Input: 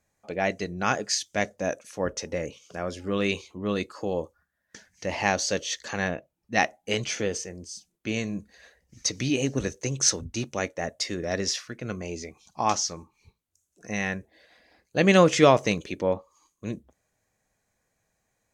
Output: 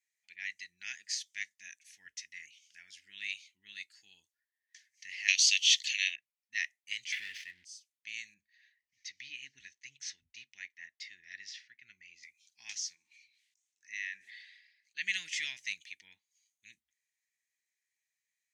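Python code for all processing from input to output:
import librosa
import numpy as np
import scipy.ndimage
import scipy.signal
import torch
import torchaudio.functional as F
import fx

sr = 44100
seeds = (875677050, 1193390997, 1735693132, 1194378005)

y = fx.chain(x, sr, fx.highpass(hz=360.0, slope=24),
    fx.high_shelf_res(hz=2000.0, db=12.0, q=3.0), at=(5.28, 6.16))
y = fx.chain(y, sr, fx.cvsd(bps=64000),
    fx.lowpass(hz=3400.0, slope=24),
    fx.leveller(passes=3), at=(7.12, 7.65))
y = fx.chain(y, sr, fx.lowpass(hz=4600.0, slope=12),
    fx.high_shelf(hz=2500.0, db=-6.0), at=(8.34, 12.23))
y = fx.chain(y, sr, fx.bandpass_edges(low_hz=230.0, high_hz=6000.0),
    fx.sustainer(db_per_s=48.0), at=(12.95, 15.02))
y = scipy.signal.sosfilt(scipy.signal.ellip(4, 1.0, 40, 1900.0, 'highpass', fs=sr, output='sos'), y)
y = fx.high_shelf(y, sr, hz=3100.0, db=-7.5)
y = y * librosa.db_to_amplitude(-3.5)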